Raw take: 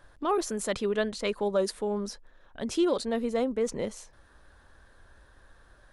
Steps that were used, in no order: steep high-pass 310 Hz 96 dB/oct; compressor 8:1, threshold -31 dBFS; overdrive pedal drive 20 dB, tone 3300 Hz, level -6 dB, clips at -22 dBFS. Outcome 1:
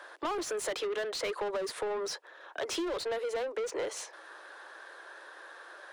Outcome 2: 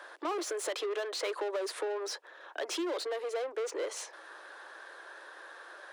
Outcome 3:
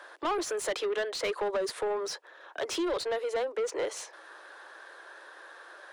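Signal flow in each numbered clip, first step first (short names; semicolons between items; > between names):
steep high-pass > overdrive pedal > compressor; overdrive pedal > compressor > steep high-pass; compressor > steep high-pass > overdrive pedal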